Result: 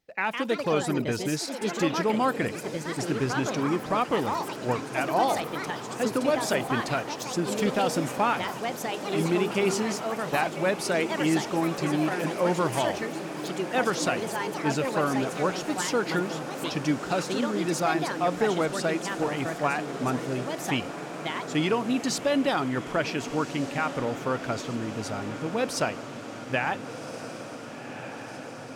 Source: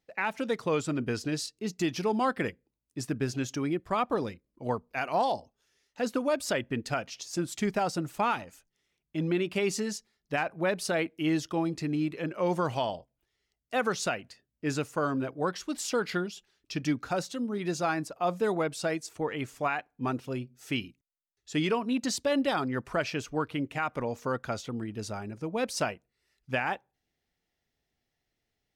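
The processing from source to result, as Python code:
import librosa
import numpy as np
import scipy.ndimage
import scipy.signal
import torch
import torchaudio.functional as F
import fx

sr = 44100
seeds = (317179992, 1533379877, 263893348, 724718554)

y = fx.echo_pitch(x, sr, ms=195, semitones=4, count=3, db_per_echo=-6.0)
y = fx.echo_diffused(y, sr, ms=1484, feedback_pct=73, wet_db=-11.5)
y = y * 10.0 ** (2.5 / 20.0)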